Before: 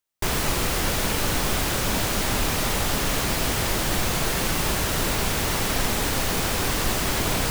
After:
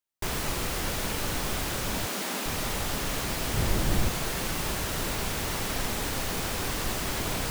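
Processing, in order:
0:02.06–0:02.46: Butterworth high-pass 180 Hz 36 dB per octave
0:03.54–0:04.09: low-shelf EQ 340 Hz +9 dB
level −6.5 dB

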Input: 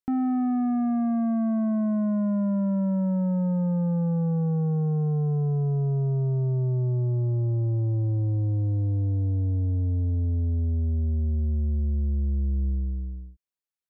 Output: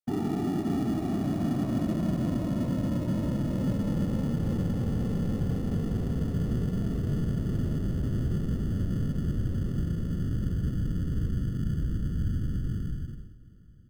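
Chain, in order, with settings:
random phases in short frames
in parallel at −8.5 dB: decimation without filtering 28×
on the sum: repeating echo 761 ms, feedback 54%, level −23.5 dB
level −6.5 dB

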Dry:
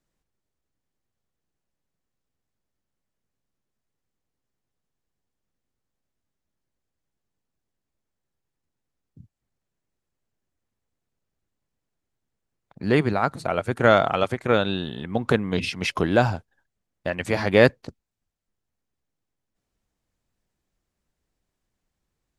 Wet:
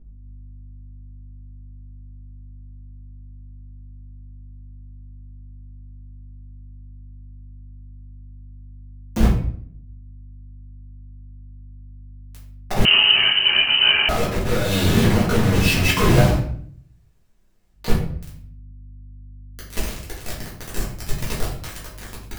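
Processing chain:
sub-octave generator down 1 octave, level +2 dB
camcorder AGC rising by 55 dB per second
0:14.62–0:15.27: low-shelf EQ 88 Hz −8 dB
downward compressor 10 to 1, threshold −31 dBFS, peak gain reduction 27 dB
log-companded quantiser 2 bits
sample-and-hold tremolo 1.7 Hz
mains hum 50 Hz, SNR 19 dB
0:16.27–0:17.80: fill with room tone, crossfade 0.24 s
convolution reverb RT60 0.55 s, pre-delay 4 ms, DRR −7.5 dB
0:12.85–0:14.09: voice inversion scrambler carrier 3,000 Hz
level +4 dB

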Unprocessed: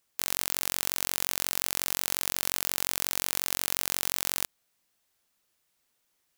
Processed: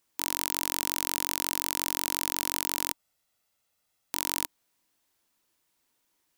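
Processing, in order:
0:02.92–0:04.13: lower of the sound and its delayed copy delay 1.5 ms
hollow resonant body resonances 300/950 Hz, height 7 dB, ringing for 30 ms

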